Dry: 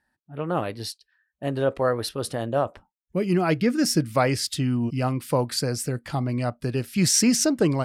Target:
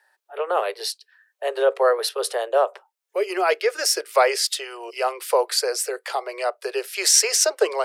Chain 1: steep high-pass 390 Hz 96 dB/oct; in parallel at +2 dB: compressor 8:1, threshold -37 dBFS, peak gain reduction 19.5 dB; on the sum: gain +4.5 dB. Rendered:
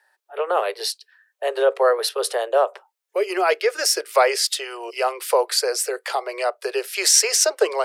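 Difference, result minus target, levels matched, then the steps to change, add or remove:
compressor: peak gain reduction -8.5 dB
change: compressor 8:1, threshold -46.5 dBFS, peak gain reduction 27.5 dB

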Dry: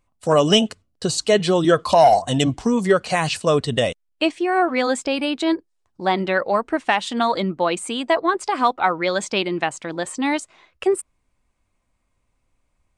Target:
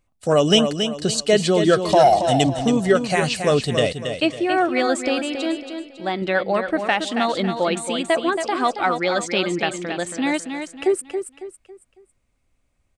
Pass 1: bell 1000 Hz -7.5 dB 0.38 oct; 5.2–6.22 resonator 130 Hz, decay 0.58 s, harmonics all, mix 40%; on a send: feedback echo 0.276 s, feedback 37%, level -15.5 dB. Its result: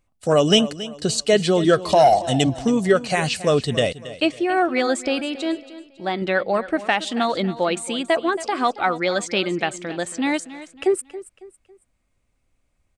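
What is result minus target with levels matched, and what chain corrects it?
echo-to-direct -8 dB
bell 1000 Hz -7.5 dB 0.38 oct; 5.2–6.22 resonator 130 Hz, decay 0.58 s, harmonics all, mix 40%; on a send: feedback echo 0.276 s, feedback 37%, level -7.5 dB

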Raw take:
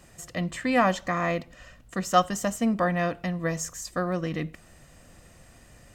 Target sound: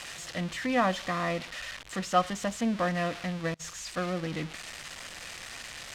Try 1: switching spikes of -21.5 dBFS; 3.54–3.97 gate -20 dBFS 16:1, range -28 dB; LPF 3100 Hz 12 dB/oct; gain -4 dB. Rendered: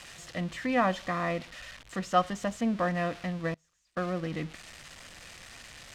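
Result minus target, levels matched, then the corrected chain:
switching spikes: distortion -6 dB
switching spikes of -15 dBFS; 3.54–3.97 gate -20 dBFS 16:1, range -28 dB; LPF 3100 Hz 12 dB/oct; gain -4 dB

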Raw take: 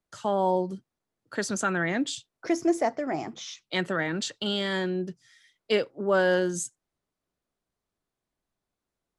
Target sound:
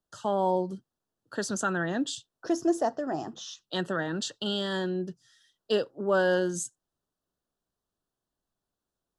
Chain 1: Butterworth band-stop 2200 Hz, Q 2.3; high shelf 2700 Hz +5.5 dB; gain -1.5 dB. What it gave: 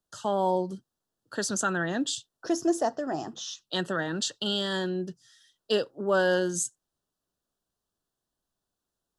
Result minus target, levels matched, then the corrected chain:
4000 Hz band +2.5 dB
Butterworth band-stop 2200 Hz, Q 2.3; gain -1.5 dB

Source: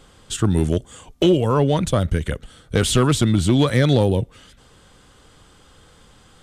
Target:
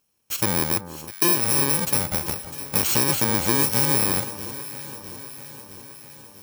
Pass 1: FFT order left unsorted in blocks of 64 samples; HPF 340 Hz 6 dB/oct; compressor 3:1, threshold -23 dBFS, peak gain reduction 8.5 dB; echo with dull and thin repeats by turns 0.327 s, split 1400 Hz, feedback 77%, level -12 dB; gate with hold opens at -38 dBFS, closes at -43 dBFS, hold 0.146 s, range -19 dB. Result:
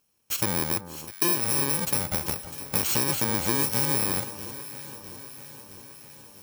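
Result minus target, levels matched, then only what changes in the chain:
compressor: peak gain reduction +4.5 dB
change: compressor 3:1, threshold -16 dBFS, peak gain reduction 4 dB

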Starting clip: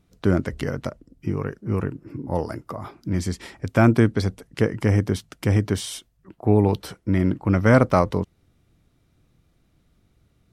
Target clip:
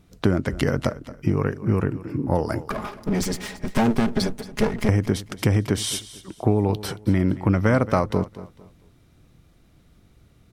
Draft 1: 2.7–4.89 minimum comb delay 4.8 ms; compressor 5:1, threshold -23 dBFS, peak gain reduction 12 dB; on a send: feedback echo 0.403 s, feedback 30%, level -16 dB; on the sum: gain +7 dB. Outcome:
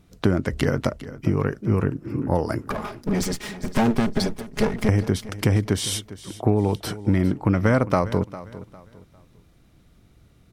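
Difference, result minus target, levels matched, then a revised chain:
echo 0.178 s late
2.7–4.89 minimum comb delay 4.8 ms; compressor 5:1, threshold -23 dBFS, peak gain reduction 12 dB; on a send: feedback echo 0.225 s, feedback 30%, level -16 dB; on the sum: gain +7 dB

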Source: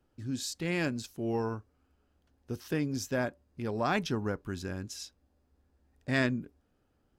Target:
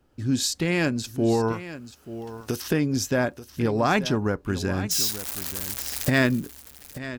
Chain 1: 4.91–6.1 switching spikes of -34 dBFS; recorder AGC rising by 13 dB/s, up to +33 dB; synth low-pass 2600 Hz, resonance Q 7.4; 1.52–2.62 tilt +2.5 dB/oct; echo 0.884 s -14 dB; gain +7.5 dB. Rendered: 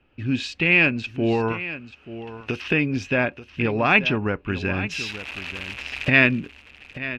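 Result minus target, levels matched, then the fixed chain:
2000 Hz band +6.0 dB
4.91–6.1 switching spikes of -34 dBFS; recorder AGC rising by 13 dB/s, up to +33 dB; 1.52–2.62 tilt +2.5 dB/oct; echo 0.884 s -14 dB; gain +7.5 dB

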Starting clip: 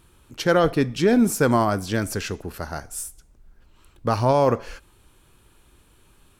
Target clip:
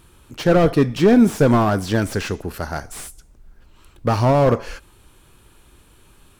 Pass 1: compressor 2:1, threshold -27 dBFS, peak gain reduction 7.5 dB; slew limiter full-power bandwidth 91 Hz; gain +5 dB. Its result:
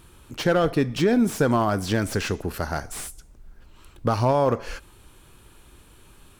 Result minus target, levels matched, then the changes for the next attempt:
compressor: peak gain reduction +7.5 dB
remove: compressor 2:1, threshold -27 dBFS, peak gain reduction 7.5 dB

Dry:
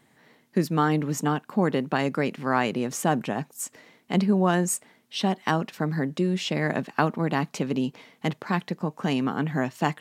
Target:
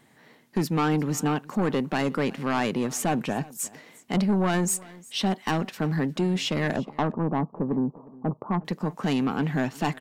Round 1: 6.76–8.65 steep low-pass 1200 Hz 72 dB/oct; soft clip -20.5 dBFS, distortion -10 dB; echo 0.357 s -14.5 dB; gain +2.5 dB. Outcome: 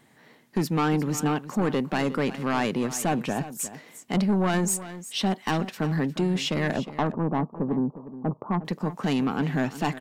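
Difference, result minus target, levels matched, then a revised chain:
echo-to-direct +7.5 dB
6.76–8.65 steep low-pass 1200 Hz 72 dB/oct; soft clip -20.5 dBFS, distortion -10 dB; echo 0.357 s -22 dB; gain +2.5 dB

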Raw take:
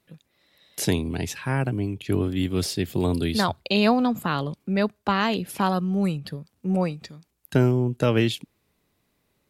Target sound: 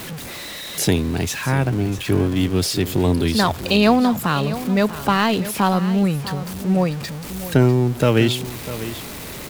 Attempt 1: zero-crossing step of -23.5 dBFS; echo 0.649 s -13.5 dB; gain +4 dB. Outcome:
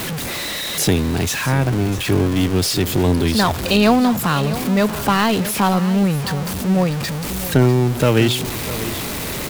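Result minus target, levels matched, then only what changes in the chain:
zero-crossing step: distortion +6 dB
change: zero-crossing step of -31 dBFS

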